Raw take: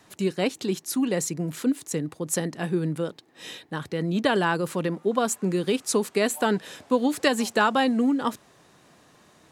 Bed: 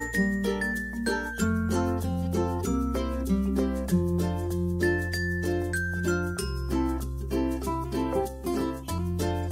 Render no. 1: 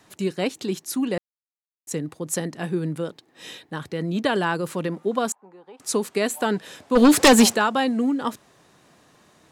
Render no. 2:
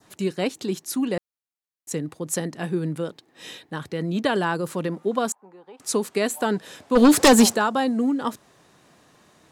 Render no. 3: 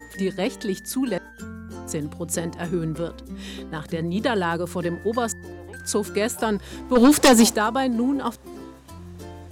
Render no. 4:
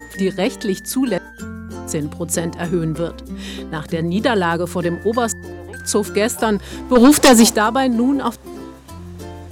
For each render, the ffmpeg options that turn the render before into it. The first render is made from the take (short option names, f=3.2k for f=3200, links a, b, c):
-filter_complex "[0:a]asettb=1/sr,asplit=3[a][b][c];[a]atrim=end=5.324[d];[b]atrim=start=5.32:end=5.8,asetpts=PTS-STARTPTS,afade=t=in:d=0.004:c=qsin,afade=t=out:st=0.476:d=0.004:c=qsin,bandpass=f=860:t=q:w=6.7[e];[c]atrim=start=5.796[f];[d][e]acrossfade=d=0.004:c1=hsin:c2=qsin[g];[g][f]acrossfade=d=0.004:c1=qsin:c2=hsin,asplit=3[h][i][j];[h]afade=t=out:st=6.95:d=0.02[k];[i]aeval=exprs='0.398*sin(PI/2*3.16*val(0)/0.398)':c=same,afade=t=in:st=6.95:d=0.02,afade=t=out:st=7.54:d=0.02[l];[j]afade=t=in:st=7.54:d=0.02[m];[k][l][m]amix=inputs=3:normalize=0,asplit=3[n][o][p];[n]atrim=end=1.18,asetpts=PTS-STARTPTS,afade=t=out:st=1.176:d=0.004:c=hsin[q];[o]atrim=start=1.18:end=1.87,asetpts=PTS-STARTPTS,volume=0[r];[p]atrim=start=1.87,asetpts=PTS-STARTPTS,afade=t=in:d=0.004:c=hsin[s];[q][r][s]concat=n=3:v=0:a=1"
-af "adynamicequalizer=threshold=0.00891:dfrequency=2500:dqfactor=1.2:tfrequency=2500:tqfactor=1.2:attack=5:release=100:ratio=0.375:range=3.5:mode=cutabove:tftype=bell"
-filter_complex "[1:a]volume=-11dB[a];[0:a][a]amix=inputs=2:normalize=0"
-af "volume=6dB,alimiter=limit=-3dB:level=0:latency=1"